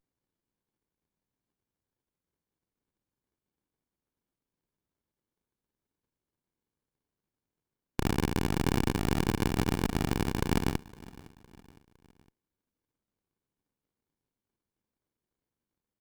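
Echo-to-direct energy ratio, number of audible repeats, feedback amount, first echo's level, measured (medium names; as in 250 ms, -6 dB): -20.0 dB, 3, 46%, -21.0 dB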